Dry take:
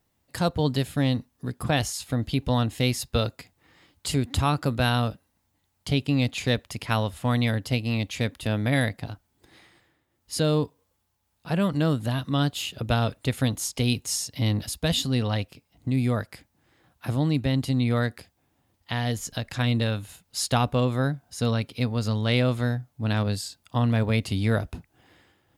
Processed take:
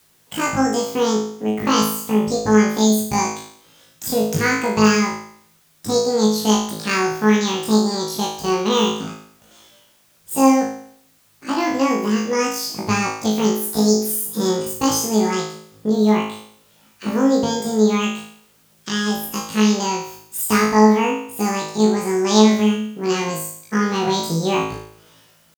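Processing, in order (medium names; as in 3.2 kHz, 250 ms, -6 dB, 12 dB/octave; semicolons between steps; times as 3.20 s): pitch shift +9.5 st; flutter echo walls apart 3.2 m, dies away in 0.61 s; added noise white -60 dBFS; trim +2 dB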